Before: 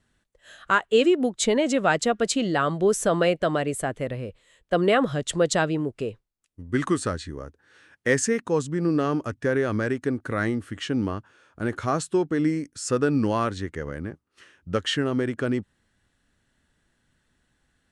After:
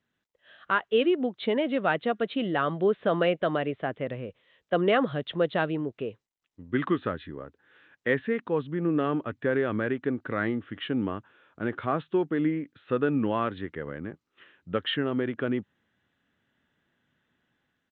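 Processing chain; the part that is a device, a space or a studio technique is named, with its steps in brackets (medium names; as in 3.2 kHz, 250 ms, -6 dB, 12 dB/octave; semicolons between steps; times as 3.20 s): Bluetooth headset (high-pass 130 Hz 12 dB/octave; level rider gain up to 6.5 dB; resampled via 8 kHz; trim -8.5 dB; SBC 64 kbps 16 kHz)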